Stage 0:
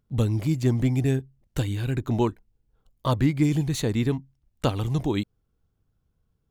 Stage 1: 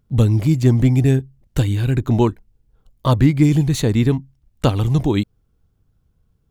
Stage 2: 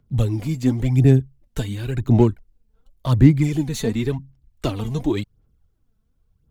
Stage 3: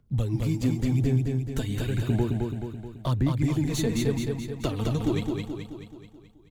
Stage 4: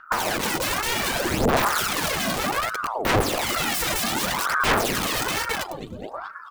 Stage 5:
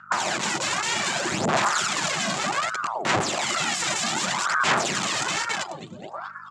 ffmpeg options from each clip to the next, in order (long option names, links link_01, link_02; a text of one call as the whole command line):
ffmpeg -i in.wav -af "lowshelf=frequency=230:gain=4.5,volume=5.5dB" out.wav
ffmpeg -i in.wav -filter_complex "[0:a]aphaser=in_gain=1:out_gain=1:delay=4.6:decay=0.6:speed=0.92:type=sinusoidal,acrossover=split=140|730|3100[link_01][link_02][link_03][link_04];[link_03]volume=25.5dB,asoftclip=hard,volume=-25.5dB[link_05];[link_01][link_02][link_05][link_04]amix=inputs=4:normalize=0,volume=-6dB" out.wav
ffmpeg -i in.wav -filter_complex "[0:a]acompressor=threshold=-21dB:ratio=4,asplit=2[link_01][link_02];[link_02]aecho=0:1:215|430|645|860|1075|1290|1505:0.668|0.361|0.195|0.105|0.0568|0.0307|0.0166[link_03];[link_01][link_03]amix=inputs=2:normalize=0,volume=-2dB" out.wav
ffmpeg -i in.wav -af "aeval=exprs='(mod(28.2*val(0)+1,2)-1)/28.2':channel_layout=same,aphaser=in_gain=1:out_gain=1:delay=2.3:decay=0.72:speed=0.64:type=sinusoidal,aeval=exprs='val(0)*sin(2*PI*800*n/s+800*0.75/1.1*sin(2*PI*1.1*n/s))':channel_layout=same,volume=8.5dB" out.wav
ffmpeg -i in.wav -af "aeval=exprs='val(0)+0.00282*(sin(2*PI*50*n/s)+sin(2*PI*2*50*n/s)/2+sin(2*PI*3*50*n/s)/3+sin(2*PI*4*50*n/s)/4+sin(2*PI*5*50*n/s)/5)':channel_layout=same,highpass=frequency=130:width=0.5412,highpass=frequency=130:width=1.3066,equalizer=frequency=270:width_type=q:width=4:gain=-8,equalizer=frequency=470:width_type=q:width=4:gain=-10,equalizer=frequency=7300:width_type=q:width=4:gain=9,lowpass=frequency=7400:width=0.5412,lowpass=frequency=7400:width=1.3066" out.wav